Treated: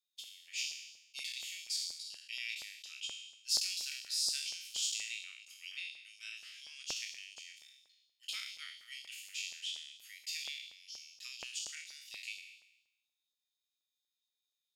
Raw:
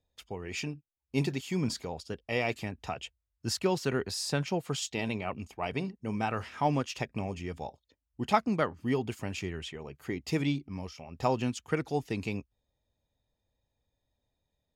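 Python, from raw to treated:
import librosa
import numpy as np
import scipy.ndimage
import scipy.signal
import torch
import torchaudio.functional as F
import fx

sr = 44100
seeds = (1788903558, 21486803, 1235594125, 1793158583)

y = fx.spec_trails(x, sr, decay_s=0.94)
y = scipy.signal.sosfilt(scipy.signal.cheby2(4, 70, [150.0, 780.0], 'bandstop', fs=sr, output='sos'), y)
y = fx.filter_lfo_highpass(y, sr, shape='saw_up', hz=4.2, low_hz=620.0, high_hz=4300.0, q=1.3)
y = y * 10.0 ** (-2.0 / 20.0)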